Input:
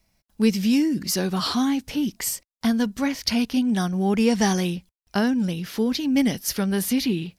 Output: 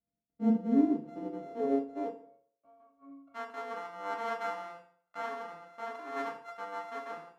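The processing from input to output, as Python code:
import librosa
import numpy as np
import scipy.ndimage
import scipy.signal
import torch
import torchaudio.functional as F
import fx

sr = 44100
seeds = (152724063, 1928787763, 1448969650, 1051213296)

y = np.r_[np.sort(x[:len(x) // 64 * 64].reshape(-1, 64), axis=1).ravel(), x[len(x) // 64 * 64:]]
y = fx.filter_sweep_bandpass(y, sr, from_hz=230.0, to_hz=1200.0, start_s=0.71, end_s=3.39, q=2.3)
y = fx.octave_resonator(y, sr, note='C#', decay_s=0.29, at=(2.12, 3.34), fade=0.02)
y = fx.rev_fdn(y, sr, rt60_s=0.57, lf_ratio=0.95, hf_ratio=0.8, size_ms=20.0, drr_db=-1.0)
y = fx.upward_expand(y, sr, threshold_db=-30.0, expansion=1.5)
y = y * 10.0 ** (-5.5 / 20.0)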